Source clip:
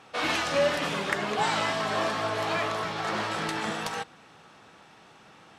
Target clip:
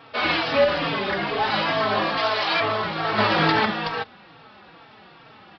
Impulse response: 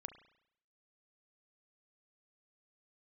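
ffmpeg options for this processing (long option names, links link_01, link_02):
-filter_complex "[0:a]asettb=1/sr,asplit=3[link_01][link_02][link_03];[link_01]atrim=end=0.644[link_04];[link_02]atrim=start=0.64:end=1.54,asetpts=PTS-STARTPTS,afade=type=in:duration=0.004:curve=qsin,afade=type=out:start_time=0.896:duration=0.004:curve=qsin,volume=25.5dB,asoftclip=hard,volume=-25.5dB[link_05];[link_03]atrim=start=1.536[link_06];[link_04][link_05]acrossfade=duration=0.004:curve1=hsin:curve2=qsin[link_07];[link_07][link_06]acrossfade=duration=0.004:curve1=qsin:curve2=hsin,asettb=1/sr,asplit=3[link_08][link_09][link_10];[link_08]atrim=end=2.174[link_11];[link_09]atrim=start=2.17:end=2.6,asetpts=PTS-STARTPTS,afade=type=in:duration=0.004:curve=qsin,afade=type=out:start_time=0.426:duration=0.004:curve=qsin,aemphasis=mode=production:type=riaa[link_12];[link_10]atrim=start=2.596[link_13];[link_11][link_12]acrossfade=duration=0.004:curve1=hsin:curve2=qsin[link_14];[link_14][link_13]acrossfade=duration=0.004:curve1=qsin:curve2=hsin,asplit=3[link_15][link_16][link_17];[link_15]afade=type=out:start_time=3.17:duration=0.02[link_18];[link_16]acontrast=51,afade=type=in:start_time=3.17:duration=0.02,afade=type=out:start_time=3.64:duration=0.02[link_19];[link_17]afade=type=in:start_time=3.64:duration=0.02[link_20];[link_18][link_19][link_20]amix=inputs=3:normalize=0,aresample=11025,aresample=44100,asplit=2[link_21][link_22];[link_22]adelay=3.9,afreqshift=-2.3[link_23];[link_21][link_23]amix=inputs=2:normalize=1,volume=8.5dB"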